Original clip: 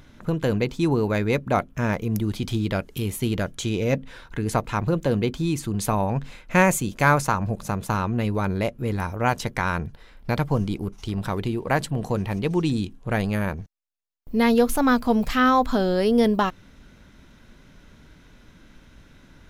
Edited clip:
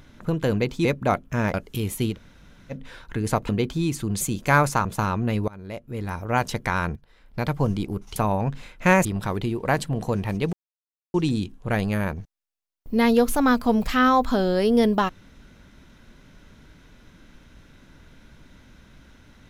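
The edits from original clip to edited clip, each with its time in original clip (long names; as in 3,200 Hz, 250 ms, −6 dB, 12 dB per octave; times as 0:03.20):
0:00.85–0:01.30: remove
0:01.99–0:02.76: remove
0:03.35–0:03.96: fill with room tone, crossfade 0.10 s
0:04.71–0:05.13: remove
0:05.85–0:06.74: move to 0:11.07
0:07.38–0:07.76: remove
0:08.39–0:09.34: fade in, from −23.5 dB
0:09.87–0:10.54: fade in, from −14 dB
0:12.55: splice in silence 0.61 s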